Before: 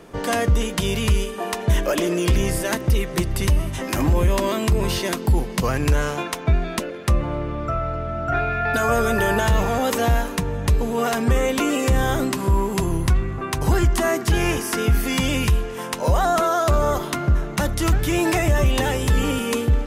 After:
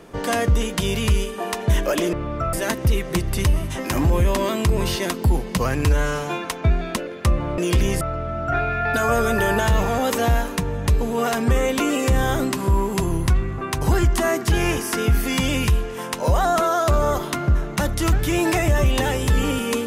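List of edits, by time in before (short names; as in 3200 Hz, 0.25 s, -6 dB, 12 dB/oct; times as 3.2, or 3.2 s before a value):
2.13–2.56 swap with 7.41–7.81
5.88–6.28 stretch 1.5×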